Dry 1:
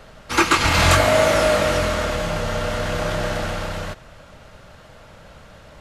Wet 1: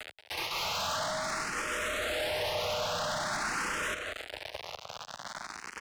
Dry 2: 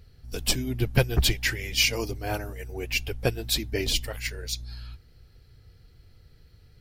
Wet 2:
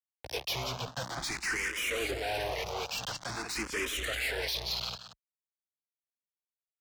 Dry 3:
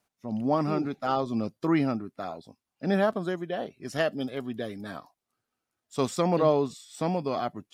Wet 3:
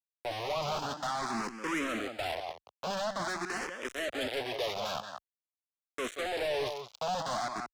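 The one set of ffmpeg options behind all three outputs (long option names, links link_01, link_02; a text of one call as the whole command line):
ffmpeg -i in.wav -filter_complex "[0:a]areverse,acompressor=threshold=-29dB:ratio=16,areverse,aeval=exprs='val(0)*gte(abs(val(0)),0.0133)':channel_layout=same,highpass=43,acrossover=split=500 7500:gain=0.158 1 0.0891[link_01][link_02][link_03];[link_01][link_02][link_03]amix=inputs=3:normalize=0,acompressor=mode=upward:threshold=-51dB:ratio=2.5,asplit=2[link_04][link_05];[link_05]aecho=0:1:180:0.211[link_06];[link_04][link_06]amix=inputs=2:normalize=0,alimiter=level_in=6.5dB:limit=-24dB:level=0:latency=1:release=15,volume=-6.5dB,aeval=exprs='0.0316*(cos(1*acos(clip(val(0)/0.0316,-1,1)))-cos(1*PI/2))+0.0126*(cos(5*acos(clip(val(0)/0.0316,-1,1)))-cos(5*PI/2))':channel_layout=same,asplit=2[link_07][link_08];[link_08]afreqshift=0.48[link_09];[link_07][link_09]amix=inputs=2:normalize=1,volume=5.5dB" out.wav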